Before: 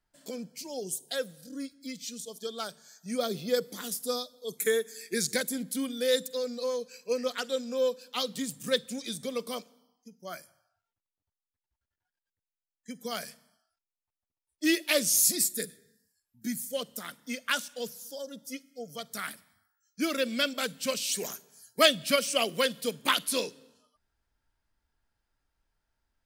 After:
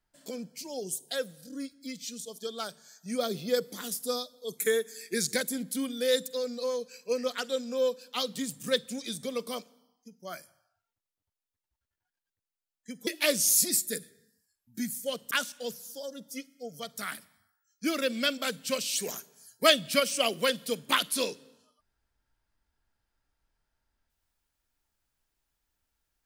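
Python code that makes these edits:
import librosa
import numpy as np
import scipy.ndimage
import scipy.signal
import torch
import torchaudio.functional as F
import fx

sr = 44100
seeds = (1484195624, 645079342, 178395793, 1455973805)

y = fx.edit(x, sr, fx.cut(start_s=13.07, length_s=1.67),
    fx.cut(start_s=16.98, length_s=0.49), tone=tone)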